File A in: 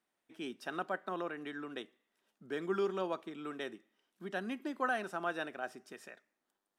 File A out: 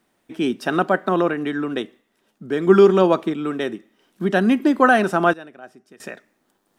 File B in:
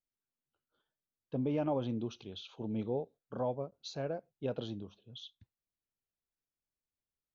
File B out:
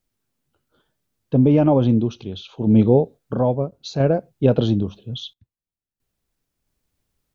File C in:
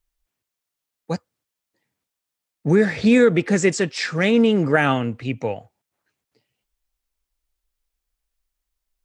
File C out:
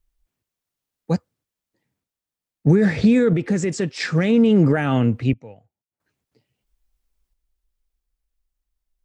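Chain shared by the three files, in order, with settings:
brickwall limiter −13 dBFS
sample-and-hold tremolo 1.5 Hz, depth 90%
low-shelf EQ 380 Hz +10 dB
loudness normalisation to −19 LKFS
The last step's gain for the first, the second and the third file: +18.0, +16.0, +0.5 decibels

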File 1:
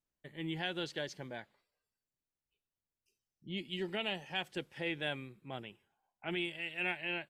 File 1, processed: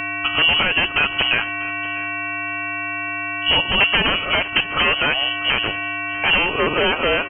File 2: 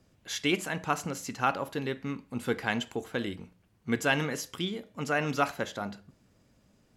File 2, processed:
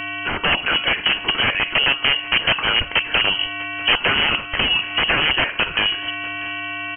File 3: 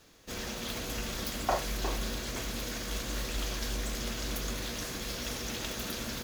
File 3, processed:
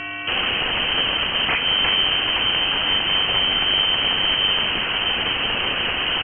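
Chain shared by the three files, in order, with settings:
hum with harmonics 400 Hz, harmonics 16, −53 dBFS −3 dB per octave
downward compressor 3 to 1, threshold −42 dBFS
wrap-around overflow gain 35.5 dB
repeating echo 643 ms, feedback 23%, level −19 dB
voice inversion scrambler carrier 3,100 Hz
loudness normalisation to −18 LKFS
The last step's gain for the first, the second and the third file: +28.5, +26.0, +23.5 decibels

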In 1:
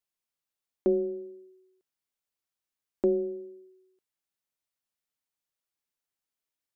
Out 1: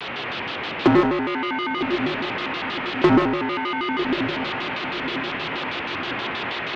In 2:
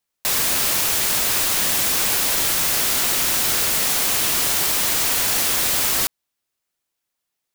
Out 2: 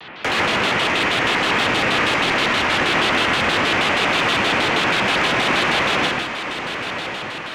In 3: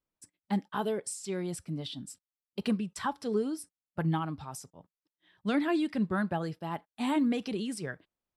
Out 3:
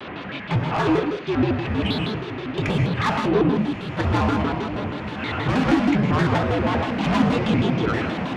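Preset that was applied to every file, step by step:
converter with a step at zero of −31 dBFS
downward compressor 6 to 1, threshold −21 dBFS
power curve on the samples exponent 1.4
single-sideband voice off tune −63 Hz 180–3,200 Hz
soft clipping −34.5 dBFS
on a send: feedback delay with all-pass diffusion 1,149 ms, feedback 49%, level −9 dB
on the sum: reverb whose tail is shaped and stops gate 210 ms flat, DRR 0 dB
pitch modulation by a square or saw wave square 6.3 Hz, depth 250 cents
normalise the peak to −6 dBFS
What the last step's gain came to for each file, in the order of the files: +23.5, +18.0, +15.0 decibels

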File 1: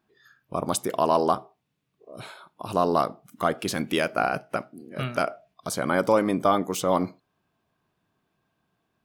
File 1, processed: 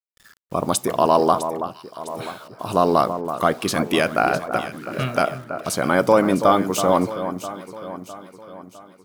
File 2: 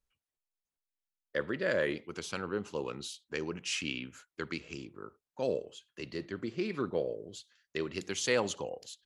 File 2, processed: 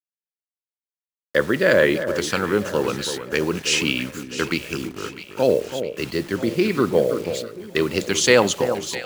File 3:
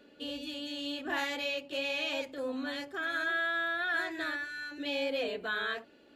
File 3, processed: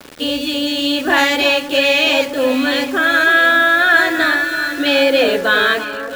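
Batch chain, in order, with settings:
bit reduction 9 bits
delay that swaps between a low-pass and a high-pass 328 ms, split 1,500 Hz, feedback 69%, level −9.5 dB
normalise the peak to −1.5 dBFS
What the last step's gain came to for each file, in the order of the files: +5.0, +14.5, +19.5 decibels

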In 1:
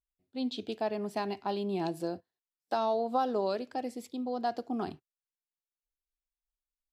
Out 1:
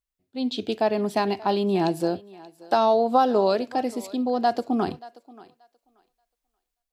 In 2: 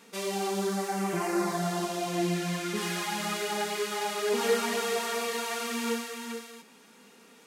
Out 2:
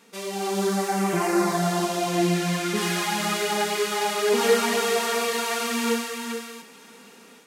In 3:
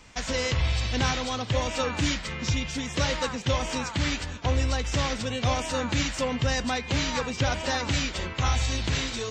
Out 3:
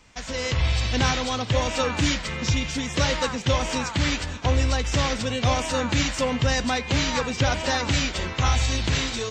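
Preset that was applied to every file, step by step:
automatic gain control gain up to 7 dB
feedback echo with a high-pass in the loop 581 ms, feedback 18%, high-pass 410 Hz, level −19 dB
loudness normalisation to −24 LKFS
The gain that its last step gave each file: +3.0, −0.5, −3.5 decibels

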